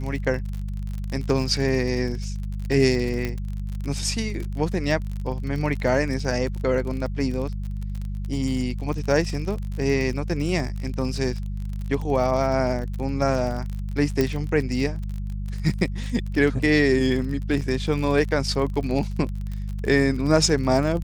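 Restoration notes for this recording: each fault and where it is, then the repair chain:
crackle 41/s -29 dBFS
hum 50 Hz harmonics 4 -29 dBFS
3.25 pop -14 dBFS
14.21 pop -9 dBFS
17.61–17.62 gap 6 ms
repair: de-click; de-hum 50 Hz, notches 4; interpolate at 17.61, 6 ms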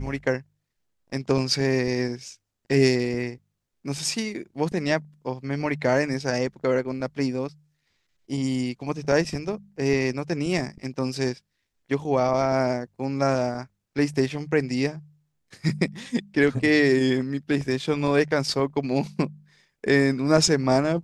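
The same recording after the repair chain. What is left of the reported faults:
none

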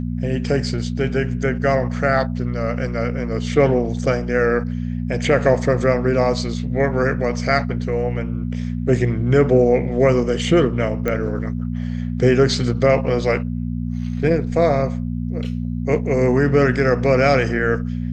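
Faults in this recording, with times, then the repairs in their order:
hum 60 Hz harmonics 4 -24 dBFS
11.08 pop -10 dBFS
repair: de-click; de-hum 60 Hz, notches 4

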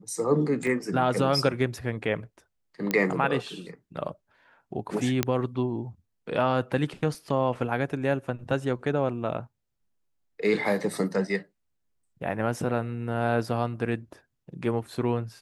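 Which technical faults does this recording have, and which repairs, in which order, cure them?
0.67 gap 3.1 ms
2.91 pop -12 dBFS
5.23 pop -7 dBFS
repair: de-click; interpolate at 0.67, 3.1 ms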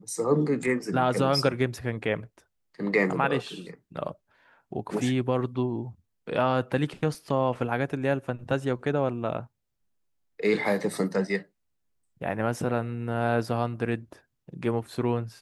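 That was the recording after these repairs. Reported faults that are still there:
none

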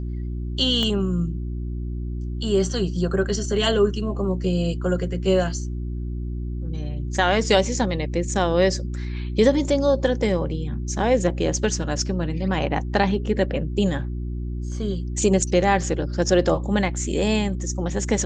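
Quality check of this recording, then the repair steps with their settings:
hum 60 Hz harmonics 6 -28 dBFS
0.83 pop -12 dBFS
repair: de-click; de-hum 60 Hz, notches 6

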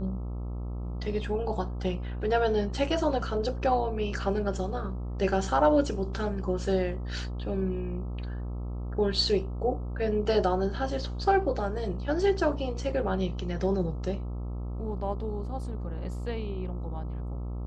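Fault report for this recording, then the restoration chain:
buzz 60 Hz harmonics 22 -34 dBFS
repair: de-hum 60 Hz, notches 22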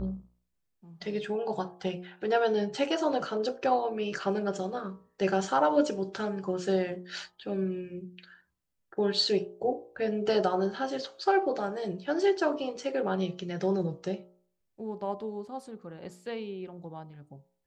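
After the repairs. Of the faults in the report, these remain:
none

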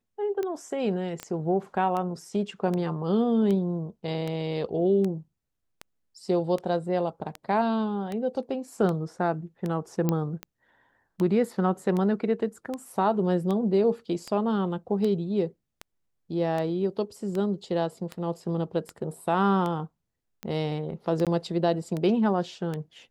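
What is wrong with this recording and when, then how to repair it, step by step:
tick 78 rpm -19 dBFS
1.23 pop -18 dBFS
10.09 pop -12 dBFS
21.25–21.27 gap 17 ms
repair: de-click; interpolate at 21.25, 17 ms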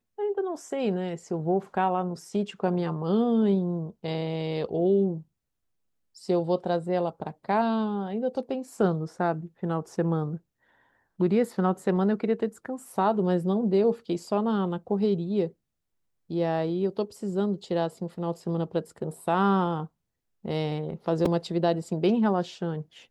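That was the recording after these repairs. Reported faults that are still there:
none

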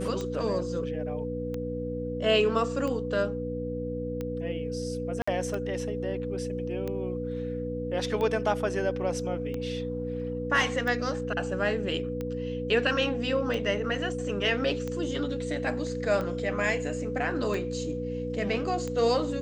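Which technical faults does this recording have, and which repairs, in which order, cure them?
hum 60 Hz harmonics 5 -35 dBFS
tick 45 rpm -21 dBFS
tone 490 Hz -33 dBFS
5.22–5.28 gap 55 ms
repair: de-click; de-hum 60 Hz, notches 5; notch 490 Hz, Q 30; interpolate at 5.22, 55 ms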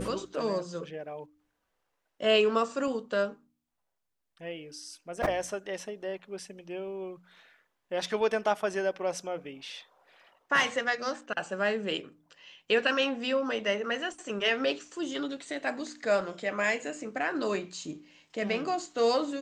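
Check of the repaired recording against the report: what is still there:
none

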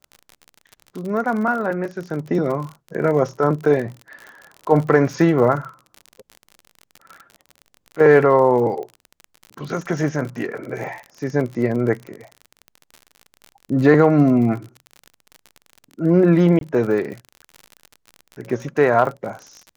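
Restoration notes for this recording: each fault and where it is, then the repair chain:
crackle 49/s -28 dBFS
16.59–16.61 gap 22 ms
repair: de-click; interpolate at 16.59, 22 ms

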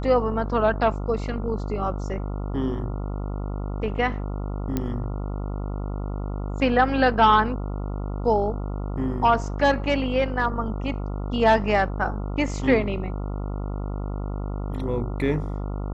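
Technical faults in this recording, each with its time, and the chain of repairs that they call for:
buzz 50 Hz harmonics 28 -29 dBFS
4.77 pop -12 dBFS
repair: de-click; de-hum 50 Hz, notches 28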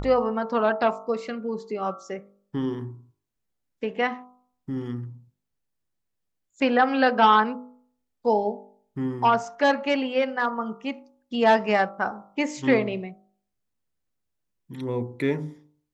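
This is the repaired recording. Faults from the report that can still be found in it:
none

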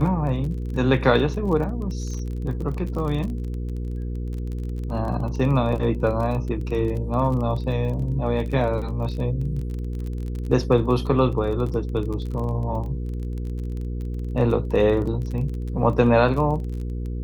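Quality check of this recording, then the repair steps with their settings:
crackle 26/s -30 dBFS
hum 60 Hz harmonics 8 -28 dBFS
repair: de-click; de-hum 60 Hz, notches 8

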